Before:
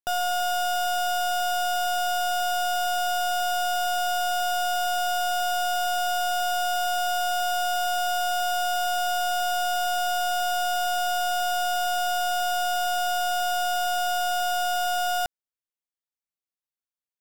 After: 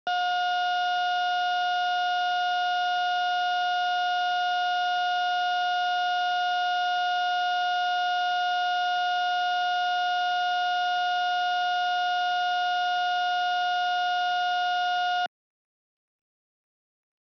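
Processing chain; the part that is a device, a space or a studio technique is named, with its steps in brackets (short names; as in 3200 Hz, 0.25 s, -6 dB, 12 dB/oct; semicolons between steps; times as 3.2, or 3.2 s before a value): Bluetooth headset (HPF 180 Hz 24 dB/oct; downsampling 8000 Hz; SBC 64 kbps 44100 Hz)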